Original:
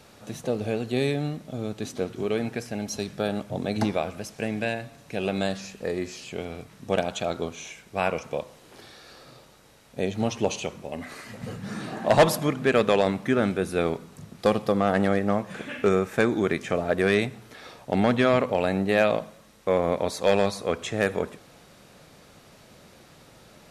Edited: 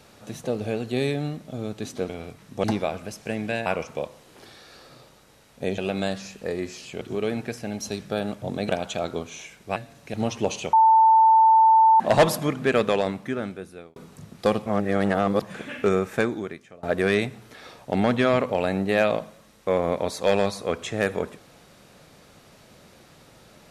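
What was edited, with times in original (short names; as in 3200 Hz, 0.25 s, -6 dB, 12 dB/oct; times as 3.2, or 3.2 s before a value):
2.09–3.77 swap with 6.4–6.95
4.79–5.17 swap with 8.02–10.14
10.73–12 bleep 890 Hz -12 dBFS
12.74–13.96 fade out
14.66–15.42 reverse
16.17–16.83 fade out quadratic, to -23.5 dB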